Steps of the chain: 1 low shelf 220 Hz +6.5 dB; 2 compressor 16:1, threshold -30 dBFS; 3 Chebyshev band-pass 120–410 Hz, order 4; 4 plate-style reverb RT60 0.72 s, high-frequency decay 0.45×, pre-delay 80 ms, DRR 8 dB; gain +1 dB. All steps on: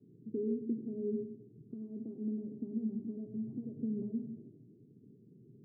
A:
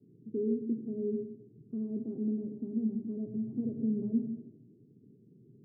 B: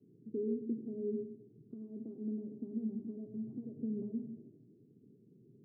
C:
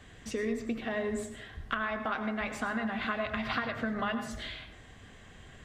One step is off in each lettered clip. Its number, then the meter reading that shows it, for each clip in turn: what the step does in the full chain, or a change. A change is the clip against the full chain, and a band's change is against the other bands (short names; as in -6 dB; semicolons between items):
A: 2, mean gain reduction 2.5 dB; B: 1, momentary loudness spread change +1 LU; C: 3, momentary loudness spread change +9 LU